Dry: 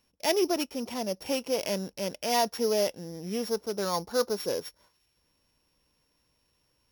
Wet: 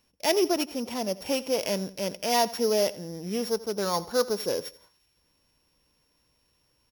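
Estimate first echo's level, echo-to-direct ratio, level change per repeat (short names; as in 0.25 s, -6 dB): -18.5 dB, -18.0 dB, -9.5 dB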